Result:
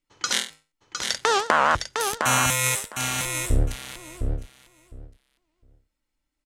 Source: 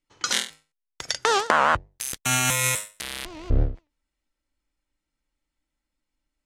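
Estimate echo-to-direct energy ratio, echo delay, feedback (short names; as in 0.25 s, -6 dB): -5.5 dB, 0.708 s, 16%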